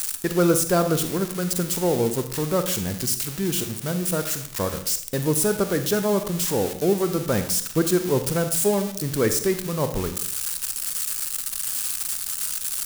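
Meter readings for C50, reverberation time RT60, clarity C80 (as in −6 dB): 10.5 dB, 0.60 s, 13.5 dB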